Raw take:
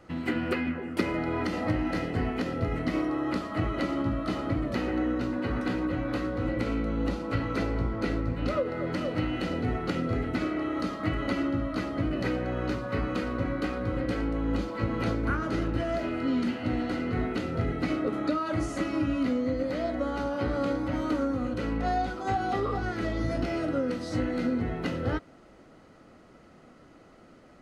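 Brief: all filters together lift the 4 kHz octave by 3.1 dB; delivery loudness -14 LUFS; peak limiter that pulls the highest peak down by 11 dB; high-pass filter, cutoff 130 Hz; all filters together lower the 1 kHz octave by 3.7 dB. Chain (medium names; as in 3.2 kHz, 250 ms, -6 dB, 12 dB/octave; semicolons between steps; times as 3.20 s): high-pass 130 Hz; peaking EQ 1 kHz -6 dB; peaking EQ 4 kHz +4.5 dB; trim +19 dB; peak limiter -5 dBFS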